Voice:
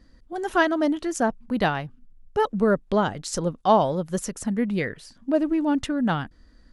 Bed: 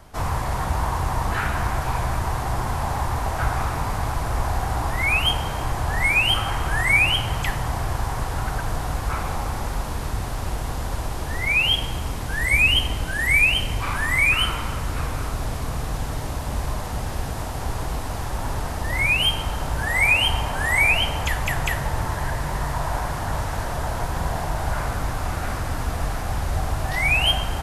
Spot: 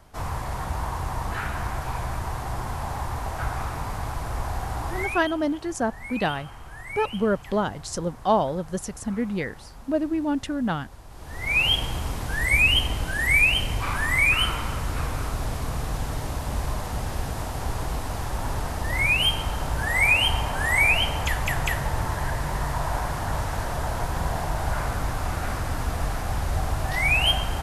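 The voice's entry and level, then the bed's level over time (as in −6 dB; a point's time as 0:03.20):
4.60 s, −2.5 dB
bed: 0:05.00 −5.5 dB
0:05.27 −18.5 dB
0:11.05 −18.5 dB
0:11.58 −1.5 dB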